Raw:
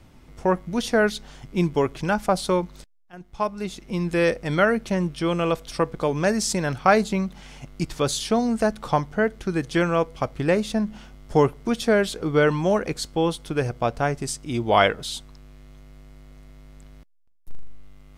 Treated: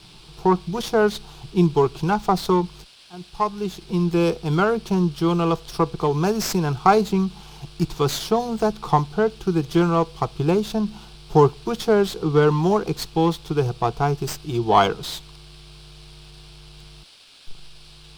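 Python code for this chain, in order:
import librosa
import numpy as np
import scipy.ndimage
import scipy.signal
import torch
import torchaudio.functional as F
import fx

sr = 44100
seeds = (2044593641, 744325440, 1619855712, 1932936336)

y = fx.high_shelf(x, sr, hz=10000.0, db=10.5)
y = fx.dmg_noise_band(y, sr, seeds[0], low_hz=1700.0, high_hz=5200.0, level_db=-48.0)
y = fx.air_absorb(y, sr, metres=79.0)
y = fx.fixed_phaser(y, sr, hz=380.0, stages=8)
y = fx.running_max(y, sr, window=3)
y = F.gain(torch.from_numpy(y), 5.5).numpy()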